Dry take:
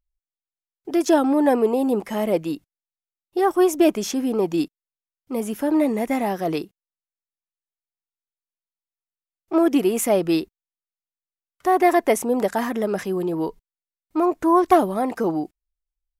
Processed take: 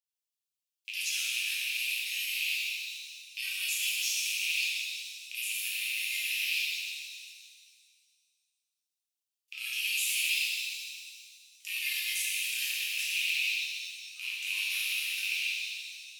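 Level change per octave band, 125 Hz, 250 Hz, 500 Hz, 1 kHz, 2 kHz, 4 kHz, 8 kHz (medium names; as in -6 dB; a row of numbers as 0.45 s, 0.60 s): under -40 dB, under -40 dB, under -40 dB, under -40 dB, +4.0 dB, +9.0 dB, +1.5 dB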